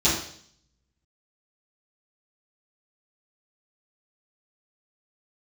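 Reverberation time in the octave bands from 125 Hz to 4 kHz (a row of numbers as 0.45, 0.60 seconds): 0.95, 0.65, 0.60, 0.55, 0.60, 0.70 seconds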